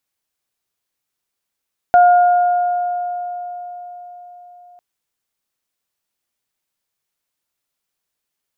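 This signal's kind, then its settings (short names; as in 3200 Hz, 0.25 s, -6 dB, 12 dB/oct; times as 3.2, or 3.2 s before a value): additive tone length 2.85 s, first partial 711 Hz, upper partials -13 dB, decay 4.63 s, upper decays 2.75 s, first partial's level -5.5 dB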